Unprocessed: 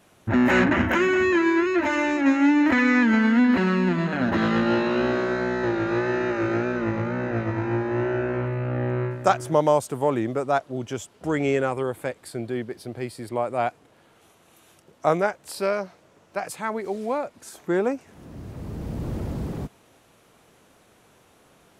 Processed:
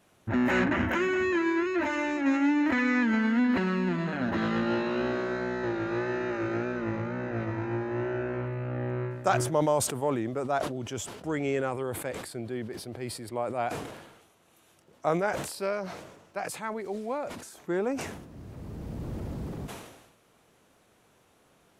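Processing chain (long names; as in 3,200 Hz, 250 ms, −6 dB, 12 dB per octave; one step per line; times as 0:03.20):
level that may fall only so fast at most 54 dB per second
level −6.5 dB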